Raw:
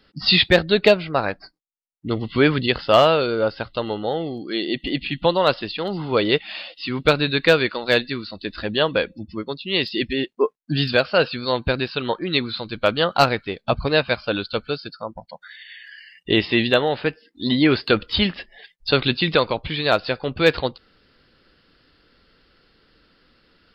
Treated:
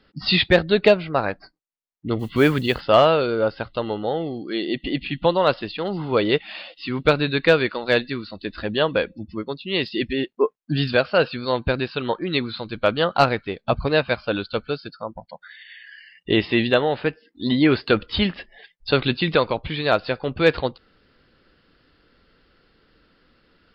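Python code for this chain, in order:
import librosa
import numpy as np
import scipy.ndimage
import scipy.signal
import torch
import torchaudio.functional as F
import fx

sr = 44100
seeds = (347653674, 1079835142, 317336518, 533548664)

y = fx.lowpass(x, sr, hz=2900.0, slope=6)
y = fx.mod_noise(y, sr, seeds[0], snr_db=29, at=(2.19, 2.81))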